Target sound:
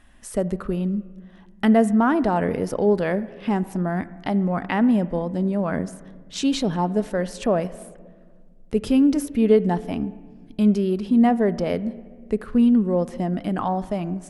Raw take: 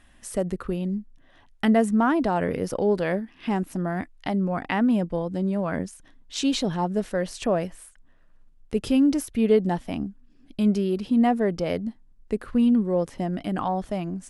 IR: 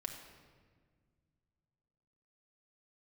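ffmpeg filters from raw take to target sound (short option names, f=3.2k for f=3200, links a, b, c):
-filter_complex "[0:a]asplit=2[a][b];[1:a]atrim=start_sample=2205,lowpass=2.3k[c];[b][c]afir=irnorm=-1:irlink=0,volume=-6.5dB[d];[a][d]amix=inputs=2:normalize=0"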